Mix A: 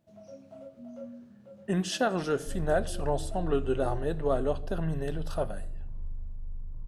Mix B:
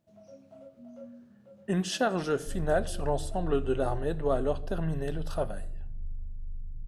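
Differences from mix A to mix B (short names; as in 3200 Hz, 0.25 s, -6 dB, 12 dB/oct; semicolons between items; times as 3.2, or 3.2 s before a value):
first sound -3.5 dB; second sound: add Gaussian blur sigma 23 samples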